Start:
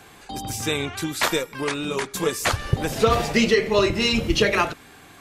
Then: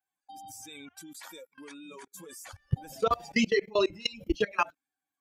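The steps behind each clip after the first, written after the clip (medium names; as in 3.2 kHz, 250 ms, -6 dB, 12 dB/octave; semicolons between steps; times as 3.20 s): expander on every frequency bin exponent 2; bass shelf 120 Hz -7 dB; level held to a coarse grid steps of 23 dB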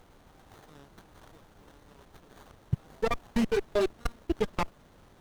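crossover distortion -44 dBFS; added noise pink -55 dBFS; sliding maximum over 17 samples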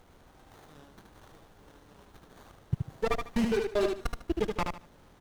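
feedback delay 75 ms, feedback 24%, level -4.5 dB; trim -1.5 dB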